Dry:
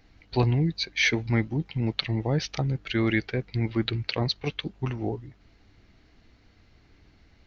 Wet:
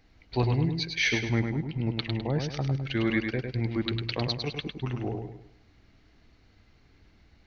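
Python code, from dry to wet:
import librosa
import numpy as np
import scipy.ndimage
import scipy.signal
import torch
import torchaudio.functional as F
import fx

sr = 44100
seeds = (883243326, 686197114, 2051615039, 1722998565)

p1 = fx.lowpass(x, sr, hz=4000.0, slope=6, at=(1.29, 2.91))
p2 = p1 + fx.echo_feedback(p1, sr, ms=103, feedback_pct=38, wet_db=-5.5, dry=0)
y = p2 * librosa.db_to_amplitude(-3.0)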